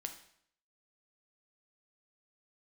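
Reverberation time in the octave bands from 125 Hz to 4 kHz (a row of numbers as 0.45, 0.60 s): 0.70, 0.70, 0.65, 0.65, 0.65, 0.60 s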